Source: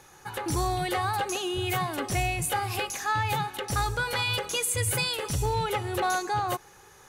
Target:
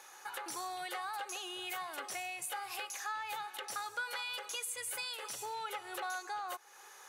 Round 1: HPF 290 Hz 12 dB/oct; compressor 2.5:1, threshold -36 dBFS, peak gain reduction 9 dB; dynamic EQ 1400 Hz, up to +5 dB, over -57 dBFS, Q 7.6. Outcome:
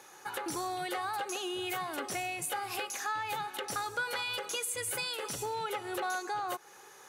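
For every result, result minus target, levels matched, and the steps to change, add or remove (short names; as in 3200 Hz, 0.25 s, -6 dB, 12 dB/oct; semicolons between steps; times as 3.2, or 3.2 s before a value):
250 Hz band +8.0 dB; compressor: peak gain reduction -4.5 dB
change: HPF 670 Hz 12 dB/oct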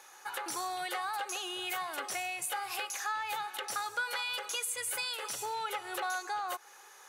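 compressor: peak gain reduction -4.5 dB
change: compressor 2.5:1, threshold -43.5 dBFS, peak gain reduction 13.5 dB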